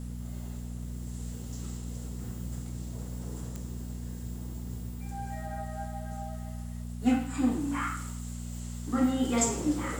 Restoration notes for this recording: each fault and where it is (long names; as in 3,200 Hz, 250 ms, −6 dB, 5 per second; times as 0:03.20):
mains hum 60 Hz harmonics 4 −38 dBFS
0:03.56: click